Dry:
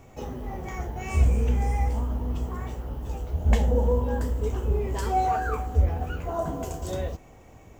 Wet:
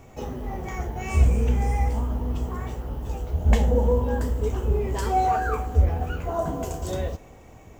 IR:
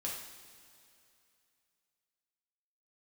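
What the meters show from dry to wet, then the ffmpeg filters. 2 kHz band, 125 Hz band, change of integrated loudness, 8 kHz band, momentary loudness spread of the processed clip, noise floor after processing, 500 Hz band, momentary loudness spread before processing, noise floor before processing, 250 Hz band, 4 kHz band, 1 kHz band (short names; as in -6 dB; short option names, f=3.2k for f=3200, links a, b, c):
+2.5 dB, +2.0 dB, +2.0 dB, +2.5 dB, 12 LU, -48 dBFS, +2.5 dB, 12 LU, -50 dBFS, +2.5 dB, +2.5 dB, +2.5 dB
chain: -filter_complex "[0:a]asplit=2[a][b];[1:a]atrim=start_sample=2205[c];[b][c]afir=irnorm=-1:irlink=0,volume=-16.5dB[d];[a][d]amix=inputs=2:normalize=0,volume=1.5dB"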